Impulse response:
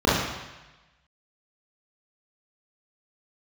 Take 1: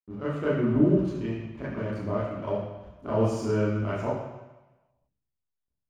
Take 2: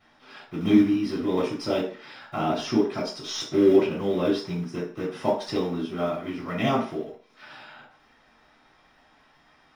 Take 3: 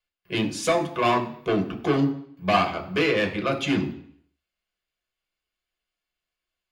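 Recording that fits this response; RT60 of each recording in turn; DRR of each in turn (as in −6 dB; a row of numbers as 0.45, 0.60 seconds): 1; 1.1, 0.40, 0.60 seconds; −9.5, −13.5, 3.0 decibels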